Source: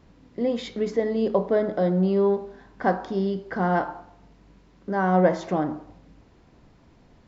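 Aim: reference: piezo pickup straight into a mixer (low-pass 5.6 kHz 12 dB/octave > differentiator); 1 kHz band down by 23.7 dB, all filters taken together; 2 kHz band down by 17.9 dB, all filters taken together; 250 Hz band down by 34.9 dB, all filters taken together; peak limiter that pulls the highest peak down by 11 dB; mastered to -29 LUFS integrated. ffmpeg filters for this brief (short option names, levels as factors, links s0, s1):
-af "equalizer=f=250:t=o:g=-8,equalizer=f=1000:t=o:g=-6,equalizer=f=2000:t=o:g=-4,alimiter=limit=0.0794:level=0:latency=1,lowpass=5600,aderivative,volume=15"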